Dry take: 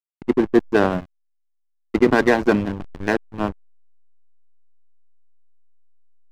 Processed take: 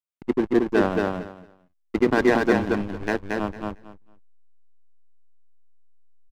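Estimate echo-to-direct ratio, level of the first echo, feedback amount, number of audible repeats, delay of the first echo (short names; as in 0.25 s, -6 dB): -3.0 dB, -3.0 dB, 18%, 3, 0.226 s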